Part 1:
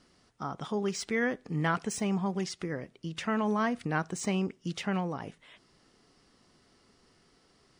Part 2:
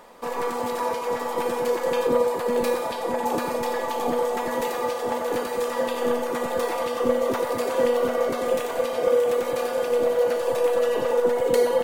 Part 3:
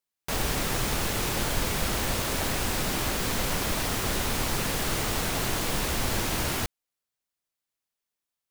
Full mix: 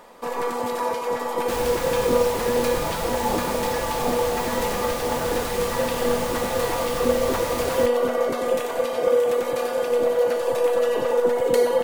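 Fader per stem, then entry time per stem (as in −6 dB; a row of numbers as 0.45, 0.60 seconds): −9.0, +1.0, −3.5 decibels; 1.25, 0.00, 1.20 seconds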